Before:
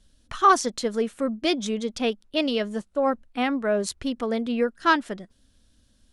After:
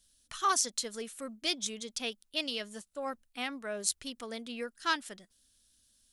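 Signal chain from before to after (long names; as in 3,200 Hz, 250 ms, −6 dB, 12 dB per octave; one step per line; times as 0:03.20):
first-order pre-emphasis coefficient 0.9
level +3 dB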